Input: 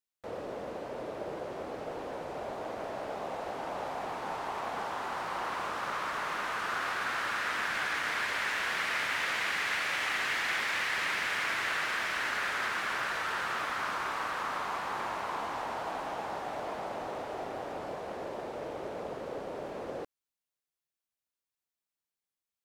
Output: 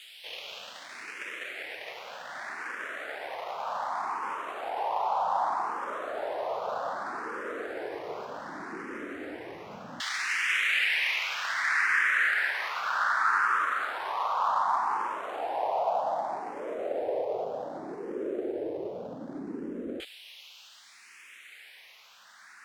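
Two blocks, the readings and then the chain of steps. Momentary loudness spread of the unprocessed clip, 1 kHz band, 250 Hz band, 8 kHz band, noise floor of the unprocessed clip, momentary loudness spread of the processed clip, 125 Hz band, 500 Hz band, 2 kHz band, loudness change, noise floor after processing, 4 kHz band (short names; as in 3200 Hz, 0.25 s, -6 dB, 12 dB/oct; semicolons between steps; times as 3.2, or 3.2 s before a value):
10 LU, +4.5 dB, +3.5 dB, -2.0 dB, under -85 dBFS, 17 LU, n/a, +3.5 dB, +2.5 dB, +3.0 dB, -53 dBFS, 0.0 dB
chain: half-waves squared off; added noise white -46 dBFS; LFO band-pass saw down 0.1 Hz 240–3200 Hz; endless phaser +0.65 Hz; gain +9 dB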